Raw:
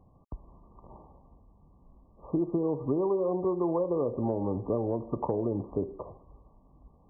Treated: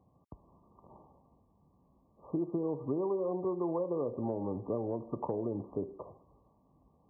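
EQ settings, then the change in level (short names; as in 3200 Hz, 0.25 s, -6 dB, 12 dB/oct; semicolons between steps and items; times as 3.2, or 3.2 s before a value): HPF 96 Hz 12 dB/oct; -5.0 dB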